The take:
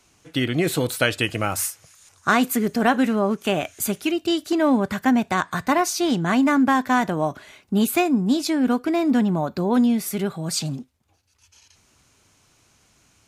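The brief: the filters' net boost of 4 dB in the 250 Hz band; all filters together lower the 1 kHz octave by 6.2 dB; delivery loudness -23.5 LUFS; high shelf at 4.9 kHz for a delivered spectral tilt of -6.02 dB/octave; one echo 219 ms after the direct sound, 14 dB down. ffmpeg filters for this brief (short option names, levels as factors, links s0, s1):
-af "equalizer=f=250:t=o:g=5,equalizer=f=1000:t=o:g=-9,highshelf=f=4900:g=-7.5,aecho=1:1:219:0.2,volume=0.631"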